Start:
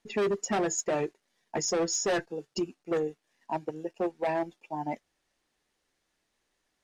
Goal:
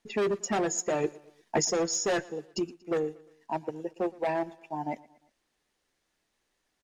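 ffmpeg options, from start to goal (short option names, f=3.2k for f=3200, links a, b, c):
-filter_complex "[0:a]asettb=1/sr,asplit=3[a][b][c];[a]atrim=end=1.044[d];[b]atrim=start=1.04:end=1.65,asetpts=PTS-STARTPTS,afade=t=in:d=0.004:c=qsin,afade=t=out:st=0.606:d=0.004:c=qsin,acontrast=32[e];[c]atrim=start=1.646[f];[d][e]acrossfade=d=0.004:c1=hsin:c2=qsin[g];[g][f]acrossfade=d=0.004:c1=qsin:c2=hsin,aecho=1:1:117|234|351:0.0794|0.0381|0.0183"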